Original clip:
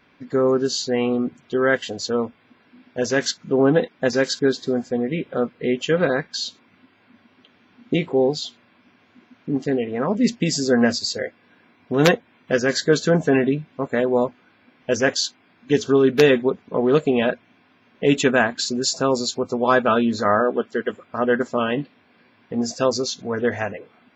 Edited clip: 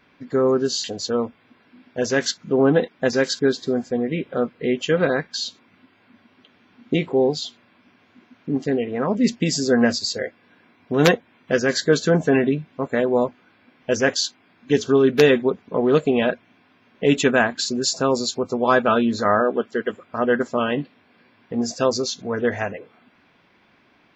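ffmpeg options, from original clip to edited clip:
ffmpeg -i in.wav -filter_complex "[0:a]asplit=2[link_01][link_02];[link_01]atrim=end=0.842[link_03];[link_02]atrim=start=1.838[link_04];[link_03][link_04]acrossfade=duration=0.004:curve1=hsin:curve2=hsin" out.wav

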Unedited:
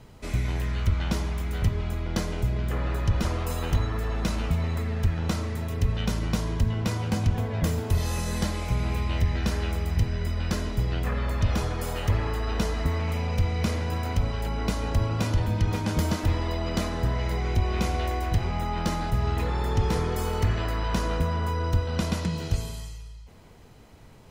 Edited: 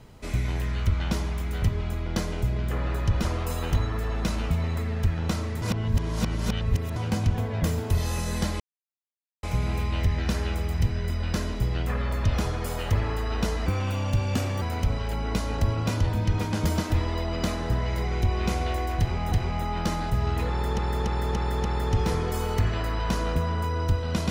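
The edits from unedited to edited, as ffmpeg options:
ffmpeg -i in.wav -filter_complex "[0:a]asplit=11[link_01][link_02][link_03][link_04][link_05][link_06][link_07][link_08][link_09][link_10][link_11];[link_01]atrim=end=5.622[link_12];[link_02]atrim=start=5.618:end=6.962,asetpts=PTS-STARTPTS,areverse[link_13];[link_03]atrim=start=6.958:end=8.6,asetpts=PTS-STARTPTS,afade=type=out:start_time=1.638:duration=0.004:curve=hsin,apad=pad_dur=0.83[link_14];[link_04]atrim=start=8.6:end=12.834,asetpts=PTS-STARTPTS,afade=type=in:duration=0.004:curve=hsin[link_15];[link_05]atrim=start=12.83:end=13.95,asetpts=PTS-STARTPTS,asetrate=51597,aresample=44100,atrim=end_sample=42215,asetpts=PTS-STARTPTS[link_16];[link_06]atrim=start=13.946:end=18.652[link_17];[link_07]atrim=start=18.318:end=19.782[link_18];[link_08]atrim=start=19.488:end=19.782[link_19];[link_09]atrim=start=19.488:end=19.782[link_20];[link_10]atrim=start=19.488:end=19.782[link_21];[link_11]atrim=start=19.488[link_22];[link_12][link_13]acrossfade=duration=0.004:curve1=hsin:curve2=hsin[link_23];[link_14][link_15]concat=n=2:v=0:a=1[link_24];[link_23][link_24]acrossfade=duration=0.004:curve1=hsin:curve2=hsin[link_25];[link_25][link_16]acrossfade=duration=0.004:curve1=hsin:curve2=hsin[link_26];[link_26][link_17]acrossfade=duration=0.004:curve1=hsin:curve2=hsin[link_27];[link_27][link_18]acrossfade=duration=0.004:curve1=hsin:curve2=hsin[link_28];[link_28][link_19]acrossfade=duration=0.004:curve1=hsin:curve2=hsin[link_29];[link_29][link_20]acrossfade=duration=0.004:curve1=hsin:curve2=hsin[link_30];[link_30][link_21]acrossfade=duration=0.004:curve1=hsin:curve2=hsin[link_31];[link_31][link_22]acrossfade=duration=0.004:curve1=hsin:curve2=hsin" out.wav

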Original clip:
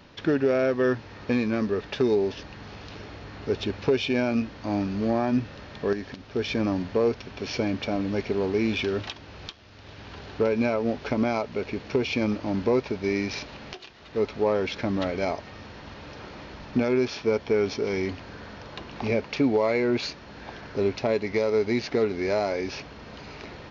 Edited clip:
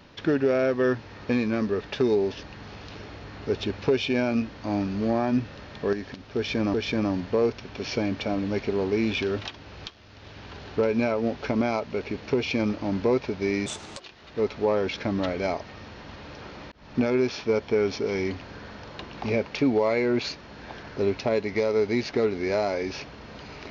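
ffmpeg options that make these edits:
ffmpeg -i in.wav -filter_complex "[0:a]asplit=5[link_01][link_02][link_03][link_04][link_05];[link_01]atrim=end=6.742[link_06];[link_02]atrim=start=6.358:end=13.284[link_07];[link_03]atrim=start=13.28:end=13.78,asetpts=PTS-STARTPTS,asetrate=65268,aresample=44100[link_08];[link_04]atrim=start=13.776:end=16.5,asetpts=PTS-STARTPTS,afade=type=out:start_time=2.72:duration=0.004:curve=hsin[link_09];[link_05]atrim=start=16.5,asetpts=PTS-STARTPTS,afade=type=in:duration=0.28[link_10];[link_06][link_07]acrossfade=duration=0.004:curve1=hsin:curve2=hsin[link_11];[link_11][link_08]acrossfade=duration=0.004:curve1=hsin:curve2=hsin[link_12];[link_09][link_10]concat=n=2:v=0:a=1[link_13];[link_12][link_13]acrossfade=duration=0.004:curve1=hsin:curve2=hsin" out.wav

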